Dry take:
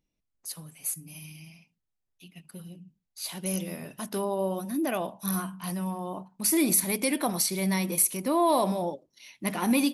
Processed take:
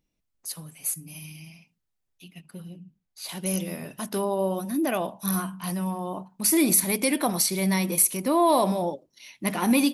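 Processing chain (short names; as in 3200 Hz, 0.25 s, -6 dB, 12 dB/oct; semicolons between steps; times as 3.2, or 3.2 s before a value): 2.41–3.29 high shelf 4300 Hz -7.5 dB; gain +3 dB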